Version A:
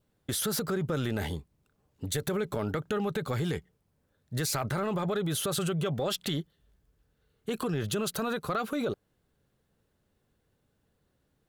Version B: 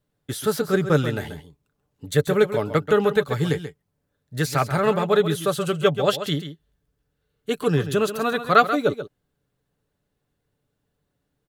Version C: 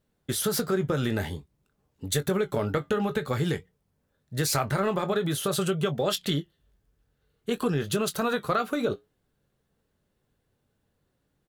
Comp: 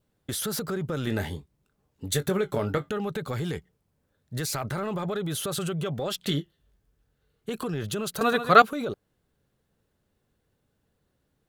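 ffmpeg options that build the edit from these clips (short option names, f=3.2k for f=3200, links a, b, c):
-filter_complex "[2:a]asplit=2[a][b];[0:a]asplit=4[c][d][e][f];[c]atrim=end=1.072[g];[a]atrim=start=1.068:end=2.892[h];[d]atrim=start=2.888:end=6.222[i];[b]atrim=start=6.218:end=7.492[j];[e]atrim=start=7.488:end=8.212[k];[1:a]atrim=start=8.208:end=8.622[l];[f]atrim=start=8.618[m];[g][h]acrossfade=d=0.004:c1=hsin:c2=hsin[n];[n][i]acrossfade=d=0.004:c1=hsin:c2=hsin[o];[o][j]acrossfade=d=0.004:c1=hsin:c2=hsin[p];[p][k]acrossfade=d=0.004:c1=hsin:c2=hsin[q];[q][l]acrossfade=d=0.004:c1=hsin:c2=hsin[r];[r][m]acrossfade=d=0.004:c1=hsin:c2=hsin"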